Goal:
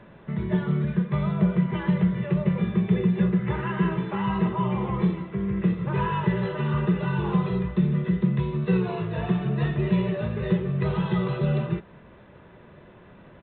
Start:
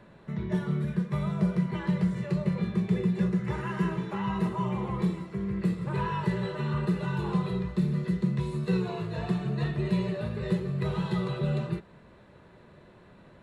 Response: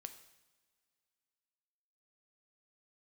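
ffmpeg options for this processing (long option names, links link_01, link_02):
-af "aresample=8000,aresample=44100,volume=4.5dB"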